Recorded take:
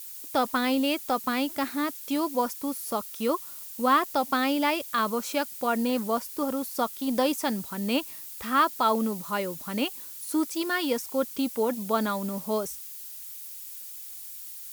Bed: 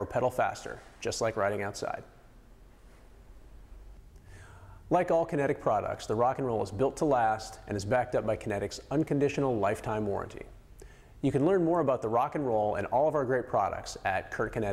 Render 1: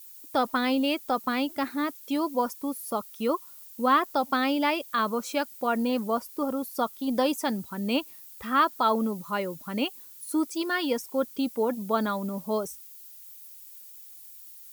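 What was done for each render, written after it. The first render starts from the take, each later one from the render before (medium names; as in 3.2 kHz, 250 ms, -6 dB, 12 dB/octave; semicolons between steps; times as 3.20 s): noise reduction 9 dB, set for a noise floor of -41 dBFS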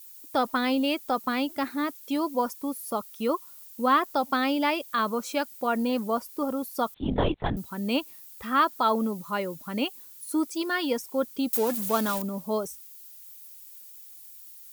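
6.94–7.57 s: LPC vocoder at 8 kHz whisper; 11.53–12.22 s: zero-crossing glitches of -22.5 dBFS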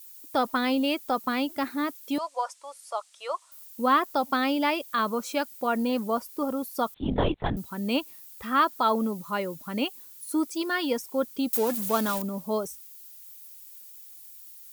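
2.18–3.52 s: elliptic band-pass 610–8600 Hz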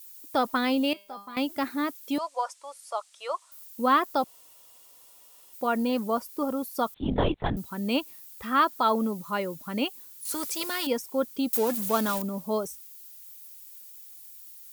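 0.93–1.37 s: feedback comb 200 Hz, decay 0.43 s, mix 90%; 4.24–5.53 s: room tone; 10.25–10.87 s: spectrum-flattening compressor 2:1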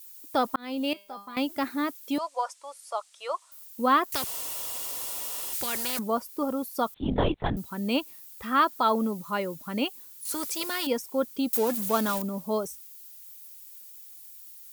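0.56–0.97 s: fade in; 4.12–5.99 s: spectrum-flattening compressor 4:1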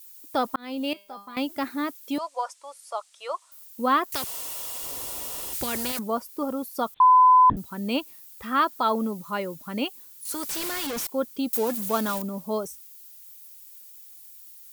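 4.83–5.92 s: bass shelf 450 Hz +10 dB; 7.00–7.50 s: bleep 1.01 kHz -11.5 dBFS; 10.49–11.07 s: one-bit comparator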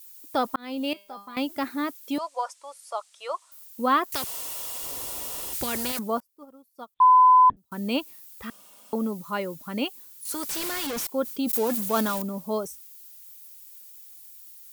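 6.20–7.72 s: upward expansion 2.5:1, over -33 dBFS; 8.50–8.93 s: room tone; 11.23–12.38 s: decay stretcher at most 37 dB/s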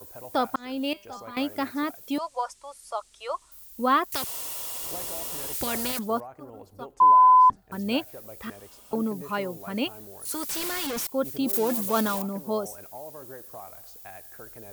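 add bed -15.5 dB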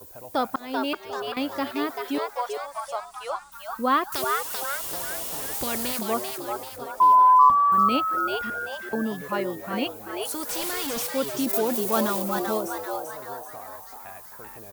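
frequency-shifting echo 388 ms, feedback 47%, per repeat +140 Hz, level -4.5 dB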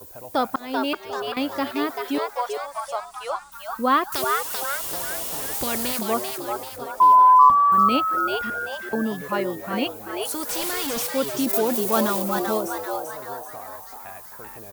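trim +2.5 dB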